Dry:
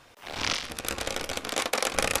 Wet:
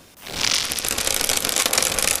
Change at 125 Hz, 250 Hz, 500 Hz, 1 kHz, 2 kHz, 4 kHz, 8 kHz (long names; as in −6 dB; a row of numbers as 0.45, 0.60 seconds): +4.5, +4.0, +2.5, +3.0, +5.5, +10.0, +13.0 decibels